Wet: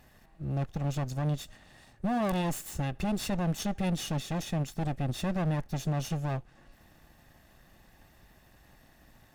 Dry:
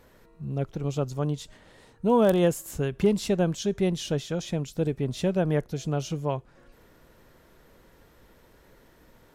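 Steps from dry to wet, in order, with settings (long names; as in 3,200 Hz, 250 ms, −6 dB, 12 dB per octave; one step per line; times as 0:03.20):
lower of the sound and its delayed copy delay 1.1 ms
notch filter 970 Hz, Q 5.5
brickwall limiter −22.5 dBFS, peak gain reduction 10 dB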